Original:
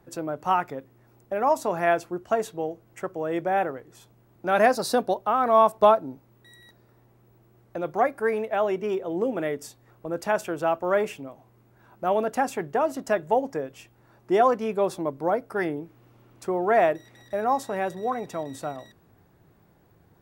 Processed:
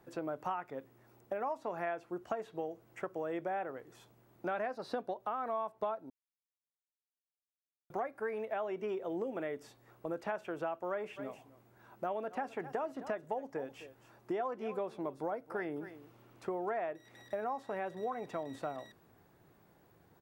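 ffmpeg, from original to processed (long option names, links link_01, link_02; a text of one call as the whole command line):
ffmpeg -i in.wav -filter_complex "[0:a]asplit=3[link_01][link_02][link_03];[link_01]afade=type=out:start_time=11.16:duration=0.02[link_04];[link_02]aecho=1:1:259:0.106,afade=type=in:start_time=11.16:duration=0.02,afade=type=out:start_time=16.74:duration=0.02[link_05];[link_03]afade=type=in:start_time=16.74:duration=0.02[link_06];[link_04][link_05][link_06]amix=inputs=3:normalize=0,asplit=3[link_07][link_08][link_09];[link_07]atrim=end=6.1,asetpts=PTS-STARTPTS,afade=type=out:start_time=6.096:duration=0.004:curve=hsin[link_10];[link_08]atrim=start=6.1:end=7.9,asetpts=PTS-STARTPTS,volume=0[link_11];[link_09]atrim=start=7.9,asetpts=PTS-STARTPTS,afade=type=in:duration=0.004:curve=hsin[link_12];[link_10][link_11][link_12]concat=n=3:v=0:a=1,acrossover=split=3400[link_13][link_14];[link_14]acompressor=threshold=-60dB:ratio=4:attack=1:release=60[link_15];[link_13][link_15]amix=inputs=2:normalize=0,lowshelf=frequency=170:gain=-9,acompressor=threshold=-32dB:ratio=6,volume=-2.5dB" out.wav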